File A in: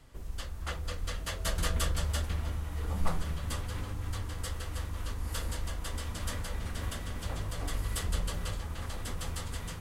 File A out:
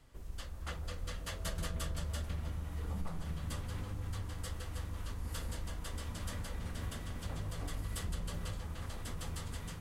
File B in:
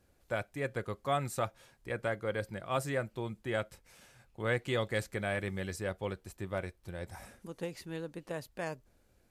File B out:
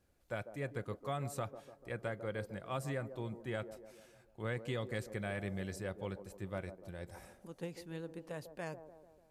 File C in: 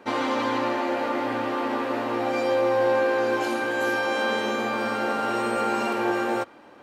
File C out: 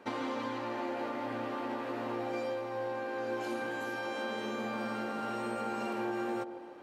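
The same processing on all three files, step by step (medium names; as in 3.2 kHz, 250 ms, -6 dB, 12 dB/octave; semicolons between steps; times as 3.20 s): dynamic bell 150 Hz, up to +6 dB, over -44 dBFS, Q 0.92; compression 6:1, threshold -28 dBFS; on a send: feedback echo behind a band-pass 147 ms, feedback 54%, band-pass 440 Hz, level -9.5 dB; on the sum: trim -5.5 dB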